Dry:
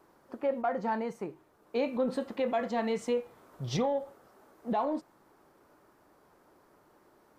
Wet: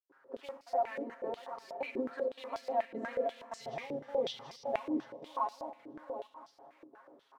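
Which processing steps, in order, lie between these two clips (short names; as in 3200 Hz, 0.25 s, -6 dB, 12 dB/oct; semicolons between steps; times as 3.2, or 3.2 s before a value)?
regenerating reverse delay 0.365 s, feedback 58%, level -2 dB; comb 7.4 ms, depth 81%; compressor, threshold -28 dBFS, peak gain reduction 9.5 dB; step gate ".xxxxx.xxxxx" 158 bpm -60 dB; modulation noise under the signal 22 dB; reverb RT60 2.1 s, pre-delay 54 ms, DRR 10 dB; stepped band-pass 8.2 Hz 340–4900 Hz; gain +5.5 dB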